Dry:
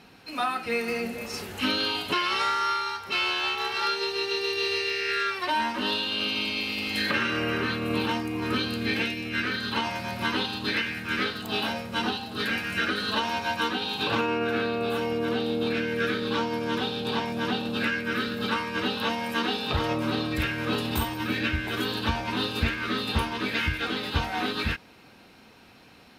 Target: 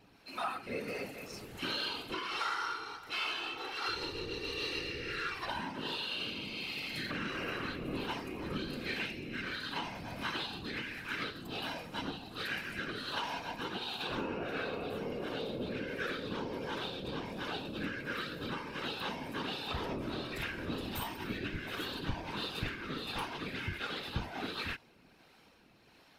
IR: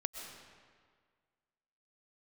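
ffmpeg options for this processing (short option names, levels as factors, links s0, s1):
-filter_complex "[0:a]asettb=1/sr,asplit=3[s0][s1][s2];[s0]atrim=end=3.884[s3];[s1]atrim=start=3.88:end=5.6,asetpts=PTS-STARTPTS,afade=t=in:d=0.004:c=qsin,afade=t=out:st=1.716:d=0.004:c=qsin,aeval=exprs='val(0)+0.0126*(sin(2*PI*60*n/s)+sin(2*PI*2*60*n/s)/2+sin(2*PI*3*60*n/s)/3+sin(2*PI*4*60*n/s)/4+sin(2*PI*5*60*n/s)/5)':c=same[s4];[s2]atrim=start=5.596[s5];[s3][s4]acrossfade=d=0.004:c1=hsin:c2=qsin[s6];[s6][s5]acrossfade=d=0.004:c1=qsin:c2=hsin,acrossover=split=470[s7][s8];[s7]aeval=exprs='val(0)*(1-0.5/2+0.5/2*cos(2*PI*1.4*n/s))':c=same[s9];[s8]aeval=exprs='val(0)*(1-0.5/2-0.5/2*cos(2*PI*1.4*n/s))':c=same[s10];[s9][s10]amix=inputs=2:normalize=0,asplit=2[s11][s12];[s12]asoftclip=type=tanh:threshold=0.0266,volume=0.376[s13];[s11][s13]amix=inputs=2:normalize=0,afftfilt=real='hypot(re,im)*cos(2*PI*random(0))':imag='hypot(re,im)*sin(2*PI*random(1))':win_size=512:overlap=0.75,volume=0.631"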